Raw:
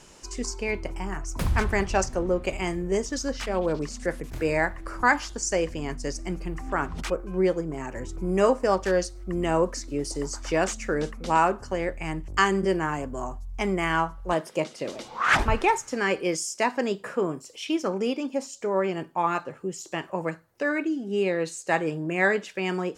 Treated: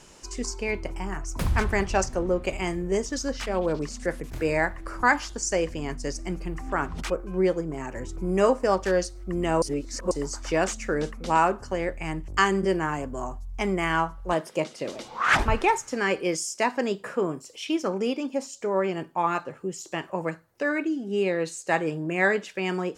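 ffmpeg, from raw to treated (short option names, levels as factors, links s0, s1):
-filter_complex "[0:a]asplit=3[s0][s1][s2];[s0]atrim=end=9.622[s3];[s1]atrim=start=9.618:end=10.112,asetpts=PTS-STARTPTS,areverse[s4];[s2]atrim=start=10.108[s5];[s3][s4]acrossfade=d=0.004:c1=hsin:c2=hsin[s6];[s6][s5]acrossfade=d=0.004:c1=hsin:c2=hsin"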